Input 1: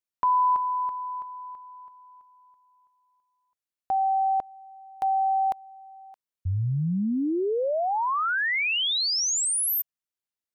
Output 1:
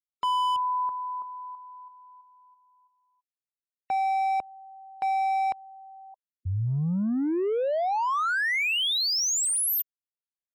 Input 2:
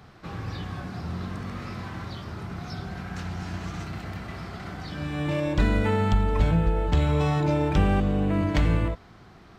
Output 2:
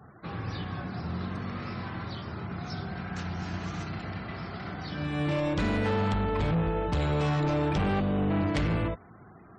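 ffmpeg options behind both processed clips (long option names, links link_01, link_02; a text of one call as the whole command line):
ffmpeg -i in.wav -af "highpass=83,volume=23.5dB,asoftclip=hard,volume=-23.5dB,afftfilt=real='re*gte(hypot(re,im),0.00316)':imag='im*gte(hypot(re,im),0.00316)':win_size=1024:overlap=0.75" out.wav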